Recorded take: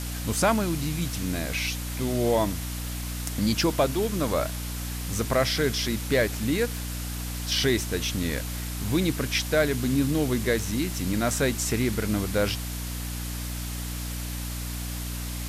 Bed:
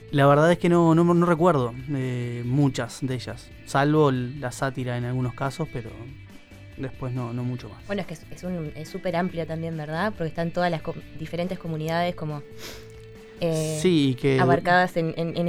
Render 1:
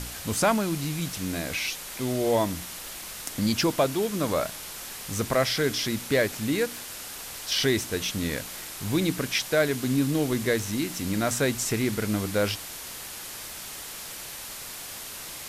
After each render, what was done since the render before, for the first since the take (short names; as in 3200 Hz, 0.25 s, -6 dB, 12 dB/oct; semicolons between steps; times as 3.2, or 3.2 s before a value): de-hum 60 Hz, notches 5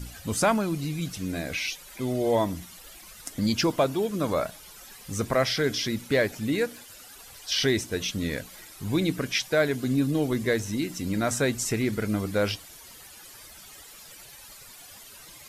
denoiser 13 dB, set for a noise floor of -39 dBFS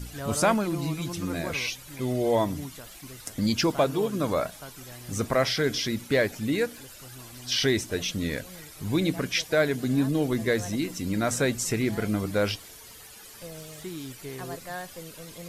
add bed -18 dB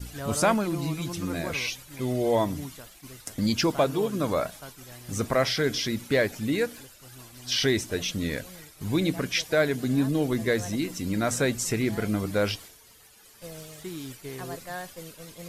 expander -40 dBFS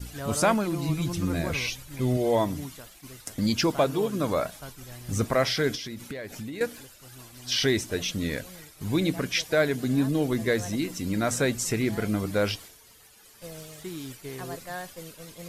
0.89–2.17 low shelf 150 Hz +10 dB; 4.6–5.24 low shelf 120 Hz +9 dB; 5.75–6.61 compressor 16:1, threshold -32 dBFS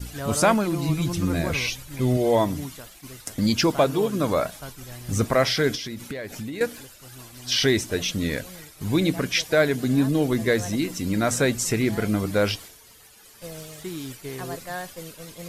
gain +3.5 dB